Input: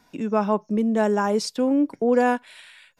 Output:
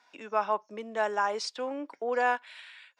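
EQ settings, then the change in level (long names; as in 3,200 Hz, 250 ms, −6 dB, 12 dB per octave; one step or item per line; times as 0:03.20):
high-pass filter 830 Hz 12 dB per octave
high-frequency loss of the air 100 metres
0.0 dB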